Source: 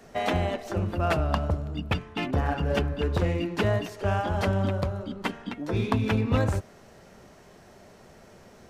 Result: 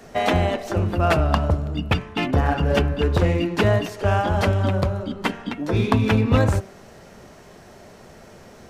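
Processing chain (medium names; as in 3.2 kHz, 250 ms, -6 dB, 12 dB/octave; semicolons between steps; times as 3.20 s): de-hum 193 Hz, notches 16; trim +6.5 dB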